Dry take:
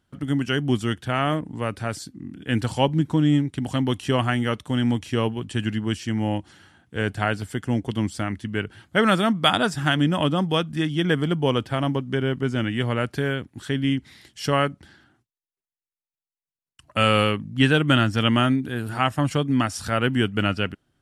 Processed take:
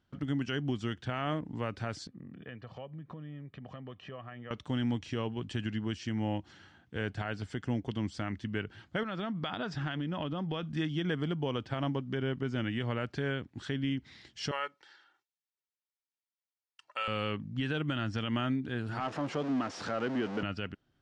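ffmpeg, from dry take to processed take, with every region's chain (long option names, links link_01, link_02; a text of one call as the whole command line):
ffmpeg -i in.wav -filter_complex "[0:a]asettb=1/sr,asplit=3[link_01][link_02][link_03];[link_01]atrim=end=2.074[link_04];[link_02]atrim=start=2.07:end=4.51,asetpts=PTS-STARTPTS,afade=type=in:duration=0.004:curve=qsin,afade=type=out:start_time=2.436:duration=0.004:curve=qsin,aecho=1:1:1.7:0.59,atrim=end_sample=107604,acompressor=threshold=-35dB:ratio=10:attack=3.2:release=140:knee=1:detection=peak,highpass=140,lowpass=2200[link_05];[link_03]atrim=start=4.506[link_06];[link_04][link_05]acrossfade=duration=0.004:curve1=hsin:curve2=qsin[link_07];[link_07][link_06]acrossfade=duration=0.004:curve1=qsin:curve2=hsin,asettb=1/sr,asplit=3[link_08][link_09][link_10];[link_08]atrim=end=9.034[link_11];[link_09]atrim=start=9.03:end=10.63,asetpts=PTS-STARTPTS,afade=type=in:duration=0.004:curve=qsin,afade=type=out:start_time=1.596:duration=0.004:curve=qsin,lowpass=4400,acompressor=threshold=-24dB:ratio=10:attack=3.2:release=140:knee=1:detection=peak[link_12];[link_10]atrim=start=10.626[link_13];[link_11][link_12]acrossfade=duration=0.004:curve1=hsin:curve2=qsin[link_14];[link_14][link_13]acrossfade=duration=0.004:curve1=qsin:curve2=hsin,asettb=1/sr,asplit=3[link_15][link_16][link_17];[link_15]atrim=end=14.514[link_18];[link_16]atrim=start=14.51:end=17.08,asetpts=PTS-STARTPTS,afade=type=in:duration=0.004:curve=qsin,afade=type=out:start_time=2.566:duration=0.004:curve=qsin,highpass=750,aecho=1:1:2.2:0.53,atrim=end_sample=113337[link_19];[link_17]atrim=start=17.076[link_20];[link_18][link_19]acrossfade=duration=0.004:curve1=hsin:curve2=qsin[link_21];[link_21][link_20]acrossfade=duration=0.004:curve1=qsin:curve2=hsin,asettb=1/sr,asplit=3[link_22][link_23][link_24];[link_22]atrim=end=19.004[link_25];[link_23]atrim=start=19:end=20.43,asetpts=PTS-STARTPTS,afade=type=in:duration=0.004:curve=qsin,afade=type=out:start_time=1.426:duration=0.004:curve=qsin,aeval=exprs='val(0)+0.5*0.0944*sgn(val(0))':channel_layout=same,highpass=270,deesser=0.85[link_26];[link_24]atrim=start=20.426[link_27];[link_25][link_26]acrossfade=duration=0.004:curve1=hsin:curve2=qsin[link_28];[link_28][link_27]acrossfade=duration=0.004:curve1=qsin:curve2=hsin,lowpass=frequency=6200:width=0.5412,lowpass=frequency=6200:width=1.3066,acompressor=threshold=-30dB:ratio=1.5,alimiter=limit=-18dB:level=0:latency=1:release=86,volume=-4.5dB" out.wav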